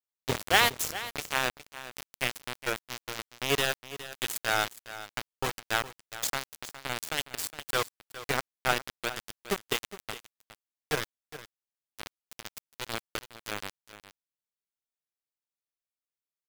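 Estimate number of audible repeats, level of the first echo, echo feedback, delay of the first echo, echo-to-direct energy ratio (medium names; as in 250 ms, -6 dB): 1, -14.5 dB, no regular repeats, 413 ms, -14.5 dB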